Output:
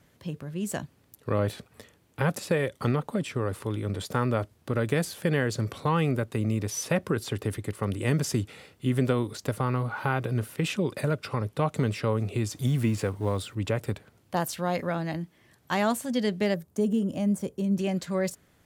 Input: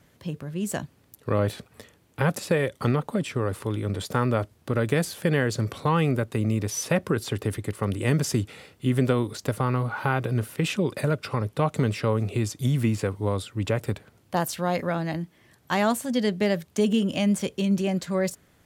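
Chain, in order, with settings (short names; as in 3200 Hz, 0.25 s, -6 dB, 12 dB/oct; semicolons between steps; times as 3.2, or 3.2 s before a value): 12.51–13.55 G.711 law mismatch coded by mu; 16.54–17.79 bell 3000 Hz -14 dB 2.4 oct; gain -2.5 dB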